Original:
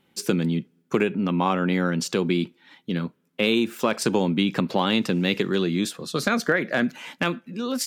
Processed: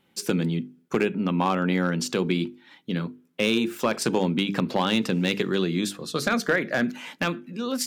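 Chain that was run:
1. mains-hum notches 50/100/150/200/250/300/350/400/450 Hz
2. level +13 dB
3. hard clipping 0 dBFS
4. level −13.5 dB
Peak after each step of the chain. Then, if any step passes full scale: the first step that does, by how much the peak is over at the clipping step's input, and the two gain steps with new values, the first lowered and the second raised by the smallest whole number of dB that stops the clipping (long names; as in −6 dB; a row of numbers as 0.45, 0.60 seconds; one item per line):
−8.0, +5.0, 0.0, −13.5 dBFS
step 2, 5.0 dB
step 2 +8 dB, step 4 −8.5 dB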